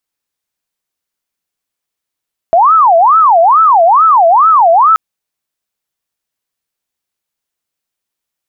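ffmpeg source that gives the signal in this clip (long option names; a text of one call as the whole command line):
ffmpeg -f lavfi -i "aevalsrc='0.668*sin(2*PI*(990*t-330/(2*PI*2.3)*sin(2*PI*2.3*t)))':duration=2.43:sample_rate=44100" out.wav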